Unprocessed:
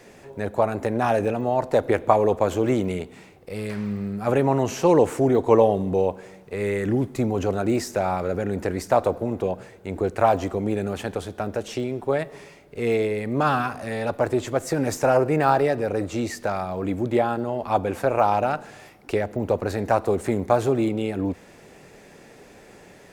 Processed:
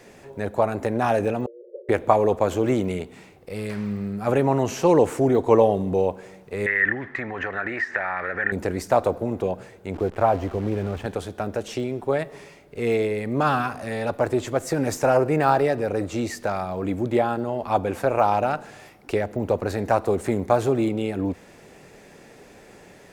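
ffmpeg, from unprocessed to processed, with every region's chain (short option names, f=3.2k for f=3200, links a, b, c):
-filter_complex "[0:a]asettb=1/sr,asplit=3[a][b][c];[a]atrim=end=1.464[d];[b]atrim=start=1.46:end=1.89,asetpts=PTS-STARTPTS,afade=t=in:d=0.004:c=qsin,afade=t=out:st=0.426:d=0.004:c=qsin,acompressor=threshold=-29dB:ratio=4:attack=3.2:release=140:knee=1:detection=peak,afreqshift=100,asuperpass=centerf=450:order=20:qfactor=2.1[e];[c]atrim=start=1.886[f];[d][e]acrossfade=d=0.004:c1=hsin:c2=qsin[g];[g][f]acrossfade=d=0.004:c1=qsin:c2=hsin,asettb=1/sr,asplit=3[h][i][j];[h]atrim=end=6.664[k];[i]atrim=start=6.66:end=8.52,asetpts=PTS-STARTPTS,afade=t=in:d=0.004:c=qsin,afade=t=out:st=1.856:d=0.004:c=qsin,tiltshelf=f=750:g=-9,acompressor=threshold=-28dB:ratio=4:attack=3.2:release=140:knee=1:detection=peak,lowpass=f=1.8k:t=q:w=13[l];[j]atrim=start=8.516[m];[k][l]acrossfade=d=0.004:c1=hsin:c2=qsin[n];[n][m]acrossfade=d=0.004:c1=qsin:c2=hsin,asettb=1/sr,asplit=3[o][p][q];[o]atrim=end=9.944[r];[p]atrim=start=9.94:end=11.06,asetpts=PTS-STARTPTS,afade=t=in:d=0.004:c=qsin,afade=t=out:st=1.116:d=0.004:c=qsin,asubboost=boost=7.5:cutoff=110,acrusher=bits=7:dc=4:mix=0:aa=0.000001,lowpass=f=1.5k:p=1[s];[q]atrim=start=11.056[t];[r][s]acrossfade=d=0.004:c1=hsin:c2=qsin[u];[u][t]acrossfade=d=0.004:c1=qsin:c2=hsin"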